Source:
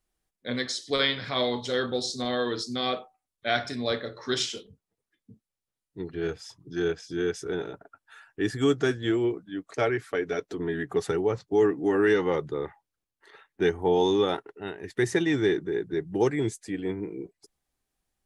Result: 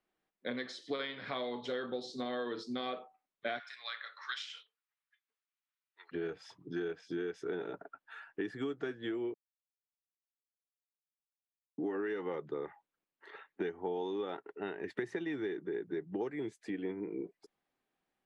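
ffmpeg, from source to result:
ffmpeg -i in.wav -filter_complex "[0:a]asplit=3[link_01][link_02][link_03];[link_01]afade=type=out:start_time=3.58:duration=0.02[link_04];[link_02]highpass=frequency=1200:width=0.5412,highpass=frequency=1200:width=1.3066,afade=type=in:start_time=3.58:duration=0.02,afade=type=out:start_time=6.11:duration=0.02[link_05];[link_03]afade=type=in:start_time=6.11:duration=0.02[link_06];[link_04][link_05][link_06]amix=inputs=3:normalize=0,asplit=3[link_07][link_08][link_09];[link_07]atrim=end=9.34,asetpts=PTS-STARTPTS,afade=type=out:start_time=9.336:duration=0.004:curve=hsin[link_10];[link_08]atrim=start=9.34:end=11.78,asetpts=PTS-STARTPTS,volume=0[link_11];[link_09]atrim=start=11.78,asetpts=PTS-STARTPTS,afade=type=in:duration=0.004:curve=hsin[link_12];[link_10][link_11][link_12]concat=n=3:v=0:a=1,acompressor=threshold=-35dB:ratio=10,acrossover=split=160 3500:gain=0.0891 1 0.126[link_13][link_14][link_15];[link_13][link_14][link_15]amix=inputs=3:normalize=0,volume=1.5dB" out.wav

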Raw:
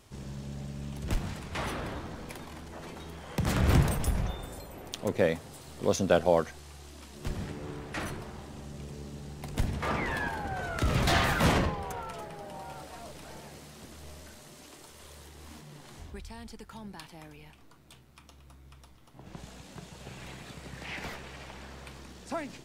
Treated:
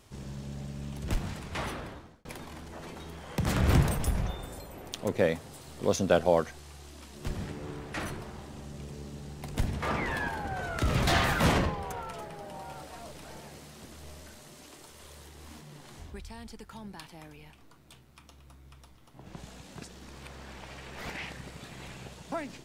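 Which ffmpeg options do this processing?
ffmpeg -i in.wav -filter_complex "[0:a]asplit=4[link_01][link_02][link_03][link_04];[link_01]atrim=end=2.25,asetpts=PTS-STARTPTS,afade=type=out:start_time=1.58:duration=0.67[link_05];[link_02]atrim=start=2.25:end=19.822,asetpts=PTS-STARTPTS,afade=type=in:duration=0.004:curve=hsin[link_06];[link_03]atrim=start=19.818:end=22.322,asetpts=PTS-STARTPTS,areverse[link_07];[link_04]atrim=start=22.318[link_08];[link_05][link_06]concat=n=2:v=0:a=1[link_09];[link_09][link_07]acrossfade=duration=0.004:curve1=hsin:curve2=hsin[link_10];[link_10][link_08]acrossfade=duration=0.004:curve1=hsin:curve2=hsin" out.wav

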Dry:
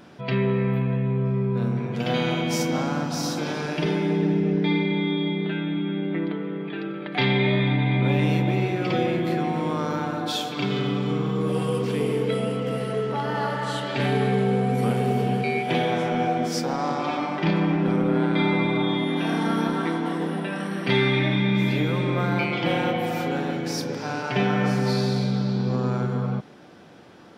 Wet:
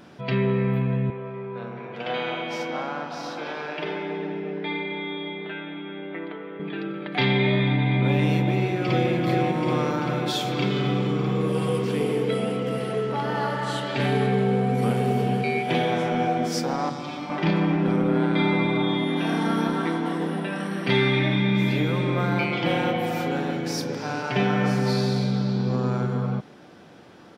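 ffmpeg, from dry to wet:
ffmpeg -i in.wav -filter_complex "[0:a]asettb=1/sr,asplit=3[link_01][link_02][link_03];[link_01]atrim=end=1.104[link_04];[link_02]atrim=start=1.1:end=6.6,asetpts=PTS-STARTPTS,afade=type=in:duration=0.004:curve=qsin,afade=type=out:start_time=5.496:duration=0.004:curve=qsin,acrossover=split=400 3800:gain=0.158 1 0.0891[link_05][link_06][link_07];[link_05][link_06][link_07]amix=inputs=3:normalize=0[link_08];[link_03]atrim=start=6.596[link_09];[link_04][link_08]acrossfade=duration=0.004:curve1=hsin:curve2=qsin[link_10];[link_10][link_09]acrossfade=duration=0.004:curve1=qsin:curve2=hsin,asplit=2[link_11][link_12];[link_12]afade=type=in:start_time=8.49:duration=0.01,afade=type=out:start_time=9.12:duration=0.01,aecho=0:1:390|780|1170|1560|1950|2340|2730|3120|3510|3900|4290|4680:0.530884|0.451252|0.383564|0.326029|0.277125|0.235556|0.200223|0.170189|0.144661|0.122962|0.104518|0.0888399[link_13];[link_11][link_13]amix=inputs=2:normalize=0,asettb=1/sr,asplit=3[link_14][link_15][link_16];[link_14]atrim=end=14.264[link_17];[link_15]atrim=start=14.26:end=14.82,asetpts=PTS-STARTPTS,afade=type=in:duration=0.004:curve=qsin,afade=type=out:start_time=0.556:duration=0.004:curve=qsin,highshelf=frequency=7400:gain=-6[link_18];[link_16]atrim=start=14.816[link_19];[link_17][link_18]acrossfade=duration=0.004:curve1=hsin:curve2=qsin[link_20];[link_20][link_19]acrossfade=duration=0.004:curve1=qsin:curve2=hsin,asettb=1/sr,asplit=3[link_21][link_22][link_23];[link_21]atrim=end=16.894[link_24];[link_22]atrim=start=16.89:end=17.3,asetpts=PTS-STARTPTS,afade=type=in:duration=0.004:curve=qsin,afade=type=out:start_time=0.406:duration=0.004:curve=qsin,acrossover=split=230|3000[link_25][link_26][link_27];[link_26]acompressor=threshold=-40dB:ratio=2:attack=3.2:release=140:knee=2.83:detection=peak[link_28];[link_25][link_28][link_27]amix=inputs=3:normalize=0[link_29];[link_23]atrim=start=17.296[link_30];[link_24][link_29]acrossfade=duration=0.004:curve1=hsin:curve2=qsin[link_31];[link_31][link_30]acrossfade=duration=0.004:curve1=qsin:curve2=hsin" out.wav

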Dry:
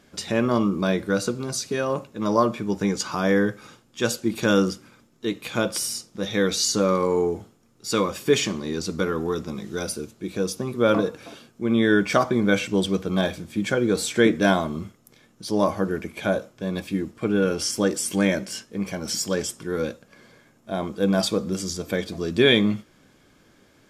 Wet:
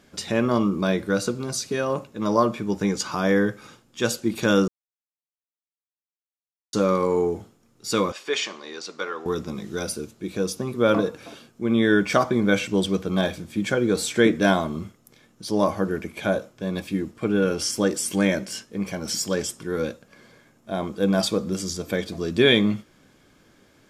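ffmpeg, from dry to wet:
ffmpeg -i in.wav -filter_complex "[0:a]asettb=1/sr,asplit=3[link_01][link_02][link_03];[link_01]atrim=end=8.124[link_04];[link_02]atrim=start=8.12:end=9.26,asetpts=PTS-STARTPTS,afade=type=in:duration=0.004:curve=qsin,afade=type=out:start_time=1.136:duration=0.004:curve=qsin,highpass=640,lowpass=5400[link_05];[link_03]atrim=start=9.256[link_06];[link_04][link_05]acrossfade=duration=0.004:curve1=hsin:curve2=qsin[link_07];[link_07][link_06]acrossfade=duration=0.004:curve1=qsin:curve2=hsin,asplit=3[link_08][link_09][link_10];[link_08]atrim=end=4.68,asetpts=PTS-STARTPTS,afade=type=out:start_time=4.676:duration=0.004:curve=hsin[link_11];[link_09]atrim=start=4.68:end=6.73,asetpts=PTS-STARTPTS,volume=0[link_12];[link_10]atrim=start=6.73,asetpts=PTS-STARTPTS,afade=type=in:duration=0.004:curve=hsin[link_13];[link_11][link_12][link_13]concat=n=3:v=0:a=1" out.wav

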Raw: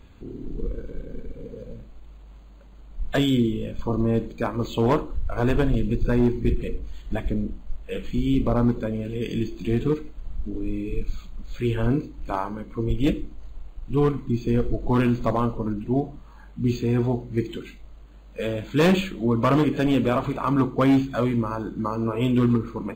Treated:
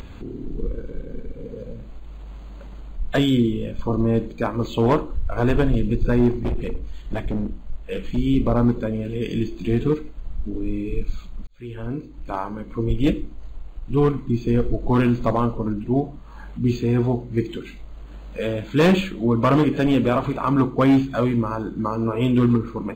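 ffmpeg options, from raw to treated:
ffmpeg -i in.wav -filter_complex "[0:a]asettb=1/sr,asplit=3[link_01][link_02][link_03];[link_01]atrim=end=6.304[link_04];[link_02]atrim=start=6.3:end=8.17,asetpts=PTS-STARTPTS,afade=type=in:duration=0.004:curve=qsin,afade=type=out:start_time=1.866:duration=0.004:curve=qsin,asoftclip=type=hard:threshold=-22dB[link_05];[link_03]atrim=start=8.166[link_06];[link_04][link_05]acrossfade=duration=0.004:curve1=hsin:curve2=qsin[link_07];[link_07][link_06]acrossfade=duration=0.004:curve1=qsin:curve2=hsin,asplit=2[link_08][link_09];[link_08]atrim=end=11.47,asetpts=PTS-STARTPTS,afade=type=out:start_time=11.466:duration=0.004:curve=hsin[link_10];[link_09]atrim=start=11.47,asetpts=PTS-STARTPTS,afade=type=in:duration=1.24[link_11];[link_10][link_11]concat=n=2:v=0:a=1,highshelf=frequency=6200:gain=-5,acompressor=mode=upward:threshold=-31dB:ratio=2.5,volume=2.5dB" out.wav

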